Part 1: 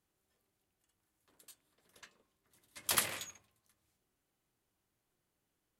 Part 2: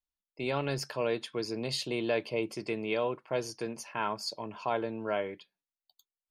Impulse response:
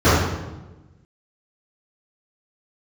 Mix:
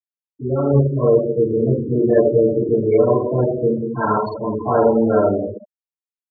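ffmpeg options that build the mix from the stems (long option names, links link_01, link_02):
-filter_complex "[0:a]volume=-5.5dB[link_01];[1:a]agate=range=-33dB:threshold=-52dB:ratio=3:detection=peak,lowpass=5900,highshelf=frequency=2500:gain=-4,volume=-6dB,asplit=3[link_02][link_03][link_04];[link_03]volume=-13.5dB[link_05];[link_04]apad=whole_len=255444[link_06];[link_01][link_06]sidechaincompress=threshold=-40dB:ratio=8:attack=16:release=390[link_07];[2:a]atrim=start_sample=2205[link_08];[link_05][link_08]afir=irnorm=-1:irlink=0[link_09];[link_07][link_02][link_09]amix=inputs=3:normalize=0,dynaudnorm=framelen=520:gausssize=3:maxgain=8dB,afftfilt=real='re*gte(hypot(re,im),0.158)':imag='im*gte(hypot(re,im),0.158)':win_size=1024:overlap=0.75"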